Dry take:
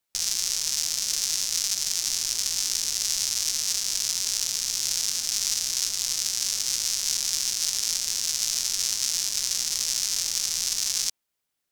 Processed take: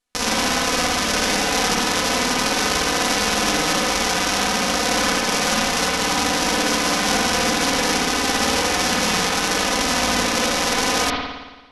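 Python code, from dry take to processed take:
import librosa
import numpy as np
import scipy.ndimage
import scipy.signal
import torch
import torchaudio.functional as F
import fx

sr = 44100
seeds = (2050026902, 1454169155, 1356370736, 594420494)

y = fx.lower_of_two(x, sr, delay_ms=4.0)
y = scipy.signal.sosfilt(scipy.signal.butter(8, 12000.0, 'lowpass', fs=sr, output='sos'), y)
y = fx.high_shelf(y, sr, hz=9100.0, db=-6.5)
y = fx.rev_spring(y, sr, rt60_s=1.2, pass_ms=(55,), chirp_ms=30, drr_db=-3.5)
y = y * librosa.db_to_amplitude(5.0)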